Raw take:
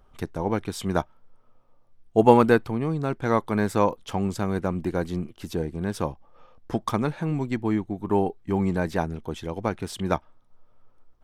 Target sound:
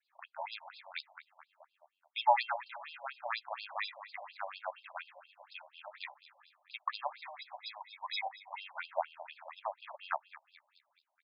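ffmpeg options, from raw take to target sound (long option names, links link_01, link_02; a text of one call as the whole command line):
ffmpeg -i in.wav -filter_complex "[0:a]asplit=3[link_01][link_02][link_03];[link_01]afade=type=out:start_time=7.04:duration=0.02[link_04];[link_02]highpass=frequency=450:width=0.5412,highpass=frequency=450:width=1.3066,equalizer=frequency=460:width_type=q:width=4:gain=7,equalizer=frequency=730:width_type=q:width=4:gain=6,equalizer=frequency=1000:width_type=q:width=4:gain=9,equalizer=frequency=1900:width_type=q:width=4:gain=-9,lowpass=frequency=5900:width=0.5412,lowpass=frequency=5900:width=1.3066,afade=type=in:start_time=7.04:duration=0.02,afade=type=out:start_time=8.21:duration=0.02[link_05];[link_03]afade=type=in:start_time=8.21:duration=0.02[link_06];[link_04][link_05][link_06]amix=inputs=3:normalize=0,acrusher=samples=15:mix=1:aa=0.000001,aecho=1:1:214|428|642|856|1070:0.168|0.0873|0.0454|0.0236|0.0123,adynamicequalizer=threshold=0.00708:dfrequency=3700:dqfactor=1.1:tfrequency=3700:tqfactor=1.1:attack=5:release=100:ratio=0.375:range=2:mode=cutabove:tftype=bell,afftfilt=real='re*between(b*sr/1024,730*pow(3700/730,0.5+0.5*sin(2*PI*4.2*pts/sr))/1.41,730*pow(3700/730,0.5+0.5*sin(2*PI*4.2*pts/sr))*1.41)':imag='im*between(b*sr/1024,730*pow(3700/730,0.5+0.5*sin(2*PI*4.2*pts/sr))/1.41,730*pow(3700/730,0.5+0.5*sin(2*PI*4.2*pts/sr))*1.41)':win_size=1024:overlap=0.75,volume=-4dB" out.wav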